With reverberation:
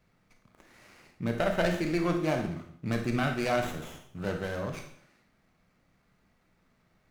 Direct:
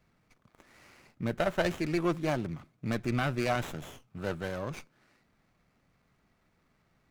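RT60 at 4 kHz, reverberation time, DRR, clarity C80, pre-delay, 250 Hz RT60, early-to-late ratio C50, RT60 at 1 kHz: 0.55 s, 0.60 s, 4.0 dB, 11.0 dB, 26 ms, 0.60 s, 6.5 dB, 0.60 s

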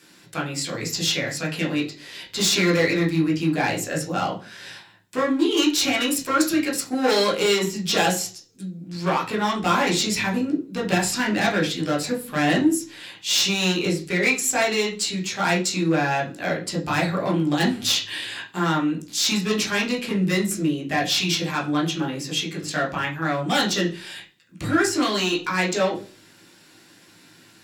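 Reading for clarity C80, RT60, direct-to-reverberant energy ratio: 16.0 dB, 0.40 s, -3.5 dB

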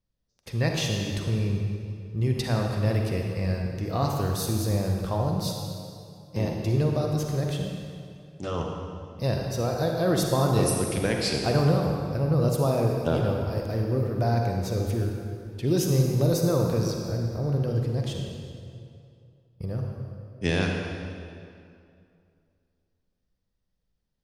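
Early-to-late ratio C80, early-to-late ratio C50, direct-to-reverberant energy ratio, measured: 2.5 dB, 1.5 dB, 1.0 dB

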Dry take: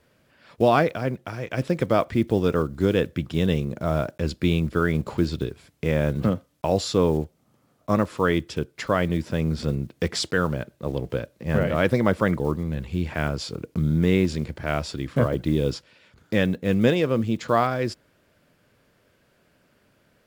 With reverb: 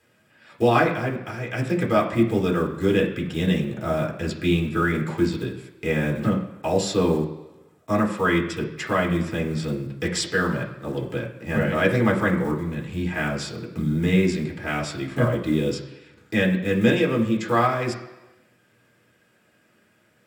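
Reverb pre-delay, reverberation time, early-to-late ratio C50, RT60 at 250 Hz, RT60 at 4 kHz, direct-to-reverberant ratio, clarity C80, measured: 3 ms, 1.1 s, 8.5 dB, 0.95 s, 1.0 s, -1.5 dB, 11.0 dB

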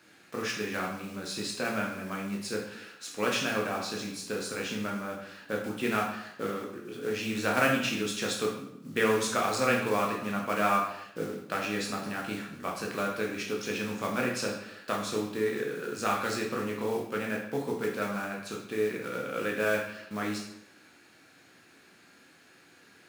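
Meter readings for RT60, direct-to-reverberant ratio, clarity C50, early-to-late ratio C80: 0.80 s, -2.0 dB, 4.5 dB, 7.5 dB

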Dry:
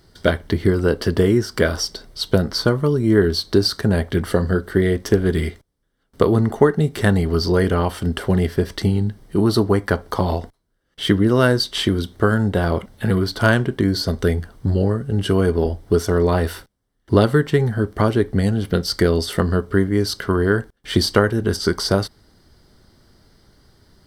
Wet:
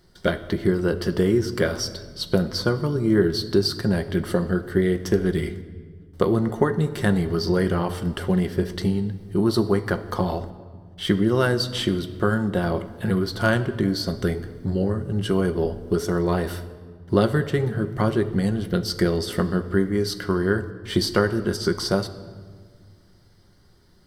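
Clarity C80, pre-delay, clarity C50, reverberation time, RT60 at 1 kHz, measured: 15.5 dB, 5 ms, 14.0 dB, 1.7 s, 1.6 s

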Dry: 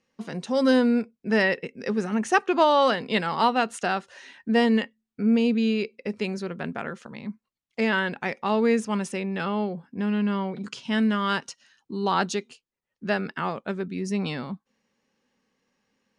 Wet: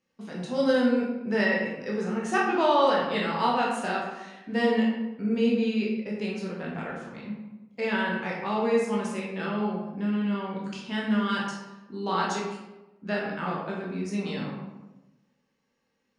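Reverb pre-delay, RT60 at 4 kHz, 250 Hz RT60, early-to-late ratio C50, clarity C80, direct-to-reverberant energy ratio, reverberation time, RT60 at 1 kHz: 12 ms, 0.65 s, 1.2 s, 2.0 dB, 4.5 dB, -4.5 dB, 1.0 s, 0.95 s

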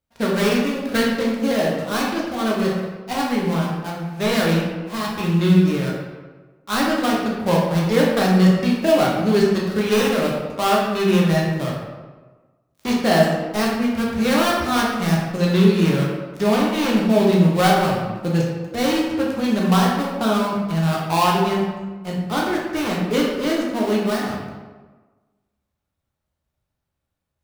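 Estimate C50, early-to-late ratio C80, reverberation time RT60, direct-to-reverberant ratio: 1.0 dB, 3.5 dB, 1.3 s, -4.0 dB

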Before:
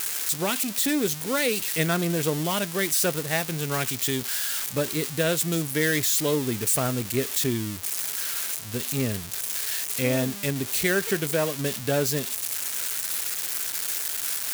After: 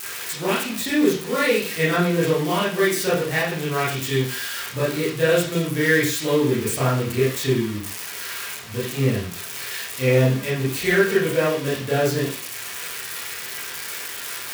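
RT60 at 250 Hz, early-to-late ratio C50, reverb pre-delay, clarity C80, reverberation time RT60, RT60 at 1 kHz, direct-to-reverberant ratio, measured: 0.40 s, 3.5 dB, 23 ms, 8.5 dB, 0.45 s, 0.45 s, -10.0 dB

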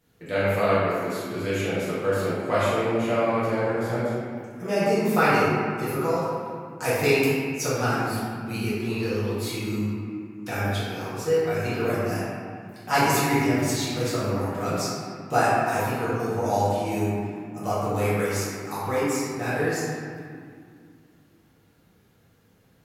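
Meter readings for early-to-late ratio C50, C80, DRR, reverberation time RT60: -4.0 dB, -1.0 dB, -11.5 dB, 2.2 s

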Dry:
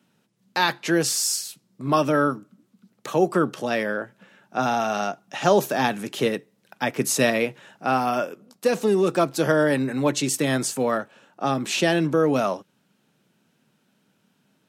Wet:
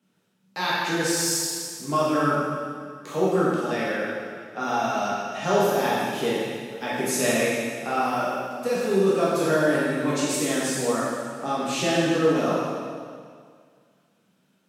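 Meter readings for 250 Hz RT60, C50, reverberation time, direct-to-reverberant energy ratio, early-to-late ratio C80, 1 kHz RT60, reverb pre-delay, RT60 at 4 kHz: 2.0 s, -3.0 dB, 2.0 s, -8.5 dB, -0.5 dB, 2.0 s, 4 ms, 1.9 s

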